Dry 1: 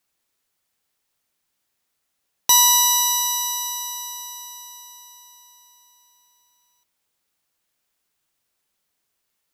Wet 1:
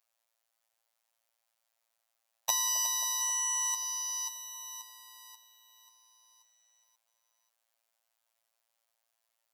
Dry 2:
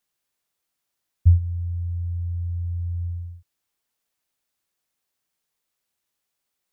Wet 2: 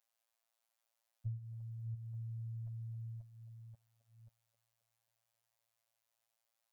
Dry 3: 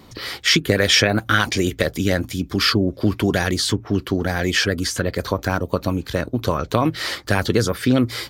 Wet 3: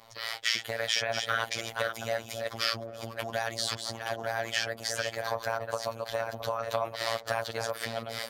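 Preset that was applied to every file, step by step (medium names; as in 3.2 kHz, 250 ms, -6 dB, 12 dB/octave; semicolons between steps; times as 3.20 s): chunks repeated in reverse 535 ms, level -7 dB; compression 3:1, threshold -21 dBFS; resonant low shelf 460 Hz -11 dB, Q 3; on a send: feedback echo behind a band-pass 267 ms, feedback 67%, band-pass 400 Hz, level -10 dB; on the sum: robot voice 114 Hz; trim -4.5 dB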